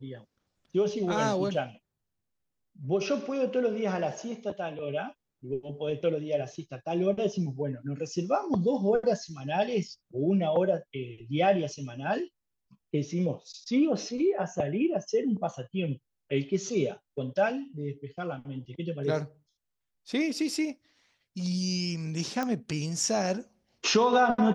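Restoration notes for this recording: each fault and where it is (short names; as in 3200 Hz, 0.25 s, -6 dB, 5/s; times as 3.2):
22.43 pop -18 dBFS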